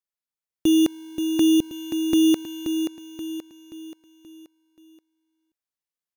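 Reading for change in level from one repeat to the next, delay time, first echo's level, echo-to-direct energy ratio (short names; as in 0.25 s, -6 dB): -7.0 dB, 0.529 s, -7.5 dB, -6.5 dB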